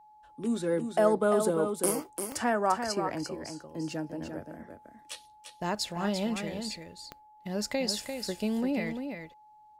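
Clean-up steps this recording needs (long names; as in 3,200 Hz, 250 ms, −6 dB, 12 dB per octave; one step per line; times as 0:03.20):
click removal
notch filter 850 Hz, Q 30
echo removal 345 ms −7 dB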